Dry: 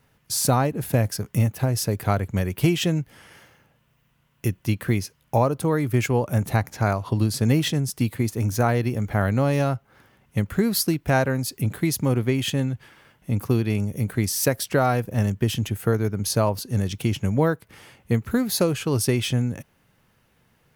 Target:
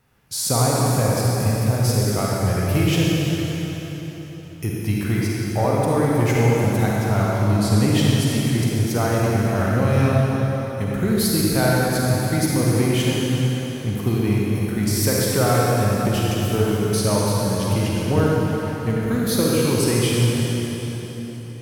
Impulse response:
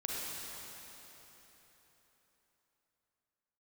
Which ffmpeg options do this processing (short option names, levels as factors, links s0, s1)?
-filter_complex "[0:a]asoftclip=type=tanh:threshold=0.335[s0];[1:a]atrim=start_sample=2205[s1];[s0][s1]afir=irnorm=-1:irlink=0,asetrate=42336,aresample=44100,volume=1.12"